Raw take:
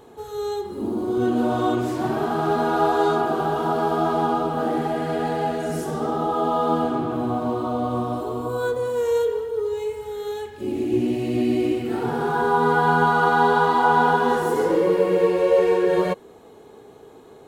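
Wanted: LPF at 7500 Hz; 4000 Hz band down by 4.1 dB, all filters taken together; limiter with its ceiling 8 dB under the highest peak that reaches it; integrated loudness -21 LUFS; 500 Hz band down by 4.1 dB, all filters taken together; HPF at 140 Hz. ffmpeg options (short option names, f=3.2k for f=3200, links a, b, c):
-af "highpass=140,lowpass=7.5k,equalizer=f=500:t=o:g=-5,equalizer=f=4k:t=o:g=-5,volume=5dB,alimiter=limit=-11dB:level=0:latency=1"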